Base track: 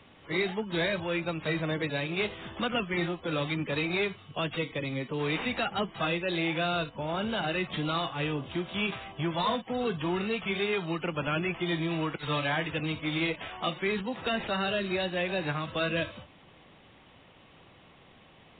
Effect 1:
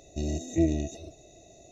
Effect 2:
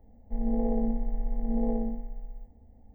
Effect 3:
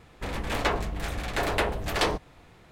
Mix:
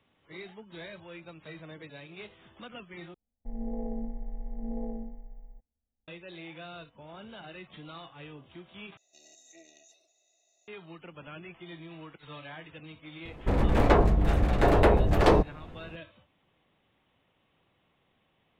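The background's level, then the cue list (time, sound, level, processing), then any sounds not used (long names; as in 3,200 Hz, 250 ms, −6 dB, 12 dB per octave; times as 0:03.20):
base track −15 dB
0:03.14: overwrite with 2 −7.5 dB + noise gate −45 dBFS, range −26 dB
0:08.97: overwrite with 1 −12 dB + high-pass filter 1,200 Hz
0:13.25: mix in 3 + tilt shelving filter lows +9.5 dB, about 1,400 Hz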